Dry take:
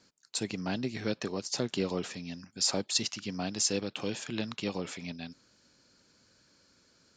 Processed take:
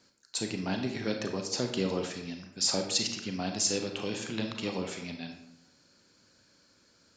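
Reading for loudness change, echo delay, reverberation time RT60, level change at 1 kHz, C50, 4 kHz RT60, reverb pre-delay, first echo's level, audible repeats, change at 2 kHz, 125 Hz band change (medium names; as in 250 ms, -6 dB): +1.0 dB, no echo, 0.80 s, +1.5 dB, 6.0 dB, 0.55 s, 31 ms, no echo, no echo, +1.5 dB, +0.5 dB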